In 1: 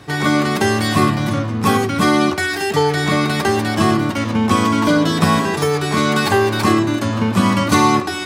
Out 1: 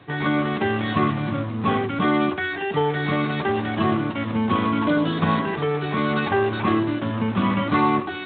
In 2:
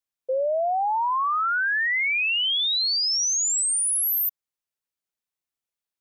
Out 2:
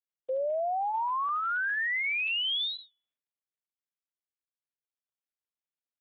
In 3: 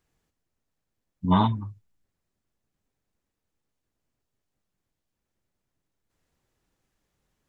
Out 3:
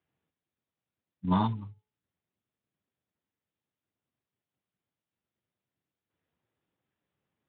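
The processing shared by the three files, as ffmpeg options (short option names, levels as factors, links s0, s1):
-af "bandreject=f=428.1:t=h:w=4,bandreject=f=856.2:t=h:w=4,bandreject=f=1284.3:t=h:w=4,bandreject=f=1712.4:t=h:w=4,bandreject=f=2140.5:t=h:w=4,bandreject=f=2568.6:t=h:w=4,bandreject=f=2996.7:t=h:w=4,bandreject=f=3424.8:t=h:w=4,volume=0.501" -ar 8000 -c:a libspeex -b:a 18k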